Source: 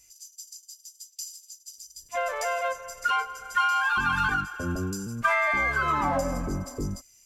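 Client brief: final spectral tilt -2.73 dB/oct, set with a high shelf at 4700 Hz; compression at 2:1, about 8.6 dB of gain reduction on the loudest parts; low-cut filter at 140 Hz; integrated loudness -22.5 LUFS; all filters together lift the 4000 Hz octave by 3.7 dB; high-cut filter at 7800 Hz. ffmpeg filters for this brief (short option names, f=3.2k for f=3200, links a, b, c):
-af "highpass=140,lowpass=7.8k,equalizer=f=4k:t=o:g=3.5,highshelf=f=4.7k:g=4.5,acompressor=threshold=-36dB:ratio=2,volume=12dB"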